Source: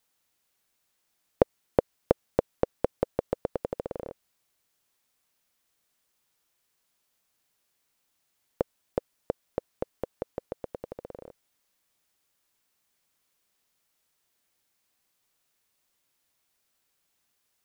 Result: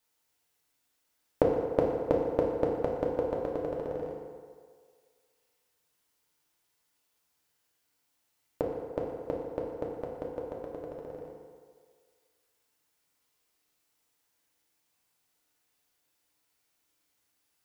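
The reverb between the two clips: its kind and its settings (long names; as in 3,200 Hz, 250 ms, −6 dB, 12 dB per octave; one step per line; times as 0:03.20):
feedback delay network reverb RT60 1.9 s, low-frequency decay 0.7×, high-frequency decay 0.65×, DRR −2.5 dB
level −4.5 dB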